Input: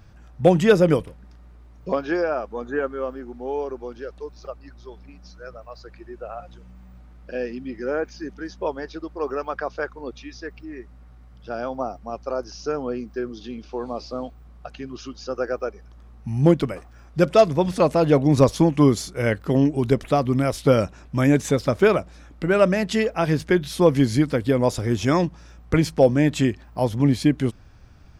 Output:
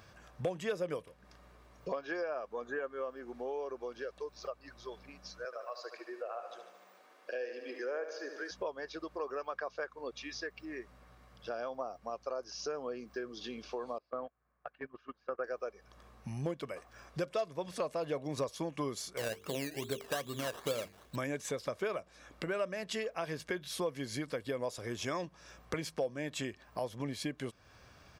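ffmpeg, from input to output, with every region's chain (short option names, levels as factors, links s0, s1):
-filter_complex "[0:a]asettb=1/sr,asplit=3[s0][s1][s2];[s0]atrim=end=5.454[s3];[s1]atrim=start=5.45:end=8.51,asetpts=PTS-STARTPTS,afade=t=in:d=0.004:c=qsin,afade=t=out:st=3.056:d=0.004:c=qsin,highpass=f=330:w=0.5412,highpass=f=330:w=1.3066,aecho=1:1:74|148|222|296|370|444|518:0.316|0.187|0.11|0.0649|0.0383|0.0226|0.0133,atrim=end_sample=134946[s4];[s2]atrim=start=8.506[s5];[s3][s4]acrossfade=d=0.004:c1=hsin:c2=qsin[s6];[s6][s5]acrossfade=d=0.004:c1=qsin:c2=hsin,asettb=1/sr,asplit=3[s7][s8][s9];[s7]atrim=end=13.984[s10];[s8]atrim=start=13.98:end=15.44,asetpts=PTS-STARTPTS,afade=t=in:d=0.004:c=qsin,afade=t=out:st=1.456:d=0.004:c=qsin,lowpass=f=1700:t=q:w=1.9,agate=range=0.0891:threshold=0.0251:ratio=16:release=100:detection=peak[s11];[s9]atrim=start=15.436[s12];[s10][s11]acrossfade=d=0.004:c1=hsin:c2=qsin[s13];[s13][s12]acrossfade=d=0.004:c1=qsin:c2=hsin,asettb=1/sr,asplit=3[s14][s15][s16];[s14]atrim=end=19.174[s17];[s15]atrim=start=19.17:end=21.16,asetpts=PTS-STARTPTS,afade=t=in:d=0.004:c=qsin,afade=t=out:st=1.986:d=0.004:c=qsin,bandreject=f=50:t=h:w=6,bandreject=f=100:t=h:w=6,bandreject=f=150:t=h:w=6,bandreject=f=200:t=h:w=6,bandreject=f=250:t=h:w=6,bandreject=f=300:t=h:w=6,bandreject=f=350:t=h:w=6,bandreject=f=400:t=h:w=6,bandreject=f=450:t=h:w=6,acrusher=samples=16:mix=1:aa=0.000001:lfo=1:lforange=9.6:lforate=2.4[s18];[s16]atrim=start=21.156[s19];[s17][s18]acrossfade=d=0.004:c1=hsin:c2=qsin[s20];[s20][s19]acrossfade=d=0.004:c1=qsin:c2=hsin,highpass=f=480:p=1,aecho=1:1:1.8:0.31,acompressor=threshold=0.01:ratio=3,volume=1.12"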